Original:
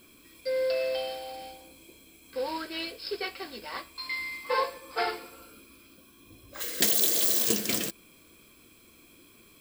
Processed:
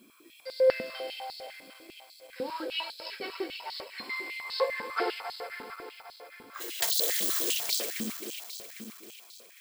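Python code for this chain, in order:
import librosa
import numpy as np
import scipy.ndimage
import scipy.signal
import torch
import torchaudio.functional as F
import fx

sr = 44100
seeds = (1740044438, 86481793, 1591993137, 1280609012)

y = fx.reverse_delay_fb(x, sr, ms=134, feedback_pct=83, wet_db=-9)
y = fx.filter_held_highpass(y, sr, hz=10.0, low_hz=230.0, high_hz=4200.0)
y = F.gain(torch.from_numpy(y), -5.5).numpy()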